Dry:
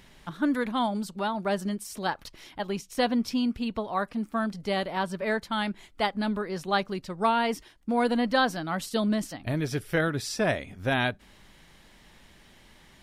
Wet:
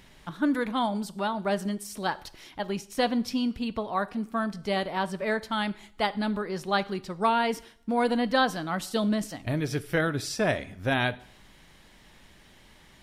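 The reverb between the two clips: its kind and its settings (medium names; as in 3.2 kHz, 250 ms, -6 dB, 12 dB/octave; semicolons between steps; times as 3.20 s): two-slope reverb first 0.59 s, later 1.6 s, from -26 dB, DRR 14.5 dB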